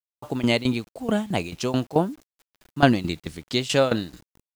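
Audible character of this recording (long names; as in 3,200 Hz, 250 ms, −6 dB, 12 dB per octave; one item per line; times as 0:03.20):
tremolo saw down 4.6 Hz, depth 85%
a quantiser's noise floor 10 bits, dither none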